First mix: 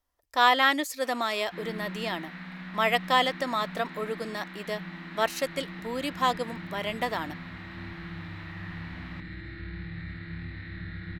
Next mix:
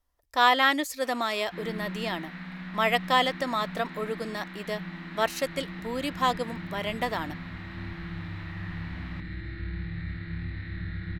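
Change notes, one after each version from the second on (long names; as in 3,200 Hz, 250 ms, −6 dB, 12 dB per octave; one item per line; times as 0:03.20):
master: add low-shelf EQ 110 Hz +8 dB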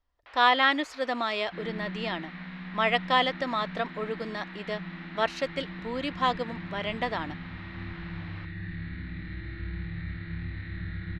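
first sound: entry −0.75 s
master: add Chebyshev low-pass filter 3,700 Hz, order 2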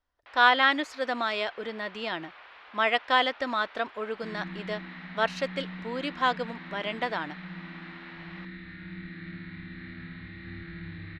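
speech: remove notch filter 1,500 Hz, Q 8.8
second sound: entry +2.70 s
master: add low-shelf EQ 110 Hz −8 dB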